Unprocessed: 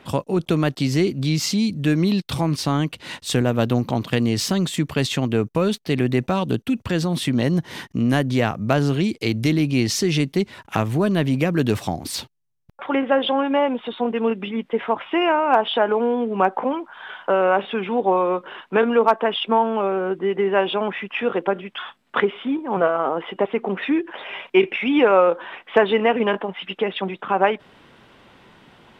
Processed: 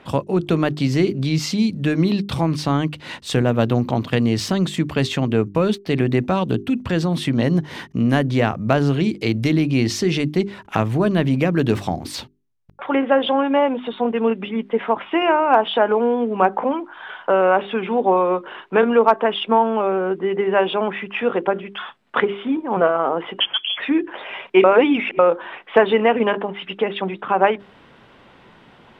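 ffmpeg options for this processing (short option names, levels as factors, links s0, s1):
-filter_complex "[0:a]asettb=1/sr,asplit=3[s0][s1][s2];[s0]atrim=end=23.404[s3];[s1]atrim=start=23.4:end=23.8,asetpts=PTS-STARTPTS,afade=t=in:d=0.004:c=qsin,afade=t=out:st=0.396:d=0.004:c=qsin,lowpass=f=3100:t=q:w=0.5098,lowpass=f=3100:t=q:w=0.6013,lowpass=f=3100:t=q:w=0.9,lowpass=f=3100:t=q:w=2.563,afreqshift=-3600[s4];[s2]atrim=start=23.796[s5];[s3][s4]acrossfade=d=0.004:c1=hsin:c2=qsin[s6];[s6][s5]acrossfade=d=0.004:c1=qsin:c2=hsin,asplit=3[s7][s8][s9];[s7]atrim=end=24.642[s10];[s8]atrim=start=24.638:end=25.192,asetpts=PTS-STARTPTS,areverse[s11];[s9]atrim=start=25.188[s12];[s10][s11]acrossfade=d=0.004:c1=hsin:c2=hsin[s13];[s13][s12]acrossfade=d=0.004:c1=hsin:c2=hsin,aemphasis=mode=reproduction:type=cd,bandreject=f=50:t=h:w=6,bandreject=f=100:t=h:w=6,bandreject=f=150:t=h:w=6,bandreject=f=200:t=h:w=6,bandreject=f=250:t=h:w=6,bandreject=f=300:t=h:w=6,bandreject=f=350:t=h:w=6,bandreject=f=400:t=h:w=6,volume=1.26"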